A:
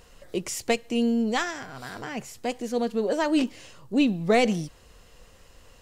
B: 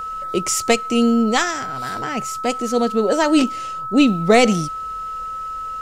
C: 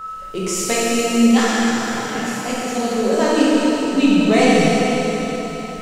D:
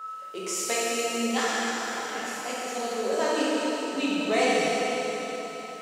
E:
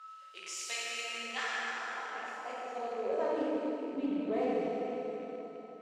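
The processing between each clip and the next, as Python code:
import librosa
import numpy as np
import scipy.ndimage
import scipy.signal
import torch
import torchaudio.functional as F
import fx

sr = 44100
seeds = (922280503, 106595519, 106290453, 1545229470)

y1 = fx.dynamic_eq(x, sr, hz=7100.0, q=1.0, threshold_db=-48.0, ratio=4.0, max_db=5)
y1 = y1 + 10.0 ** (-33.0 / 20.0) * np.sin(2.0 * np.pi * 1300.0 * np.arange(len(y1)) / sr)
y1 = y1 * 10.0 ** (7.5 / 20.0)
y2 = fx.rev_plate(y1, sr, seeds[0], rt60_s=4.1, hf_ratio=1.0, predelay_ms=0, drr_db=-8.5)
y2 = y2 * 10.0 ** (-7.0 / 20.0)
y3 = scipy.signal.sosfilt(scipy.signal.butter(2, 400.0, 'highpass', fs=sr, output='sos'), y2)
y3 = y3 * 10.0 ** (-7.0 / 20.0)
y4 = fx.rattle_buzz(y3, sr, strikes_db=-42.0, level_db=-27.0)
y4 = fx.filter_sweep_bandpass(y4, sr, from_hz=3400.0, to_hz=320.0, start_s=0.73, end_s=3.96, q=0.94)
y4 = fx.doppler_dist(y4, sr, depth_ms=0.13)
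y4 = y4 * 10.0 ** (-5.0 / 20.0)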